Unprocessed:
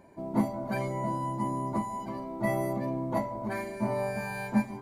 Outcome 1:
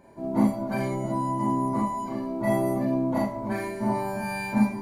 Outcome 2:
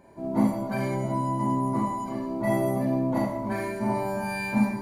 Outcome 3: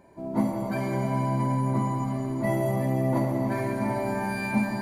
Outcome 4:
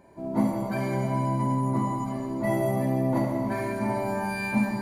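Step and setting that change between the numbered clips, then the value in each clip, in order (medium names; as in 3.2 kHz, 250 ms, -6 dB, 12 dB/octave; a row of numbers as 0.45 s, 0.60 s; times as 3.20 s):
Schroeder reverb, RT60: 0.32 s, 0.69 s, 4.6 s, 2.1 s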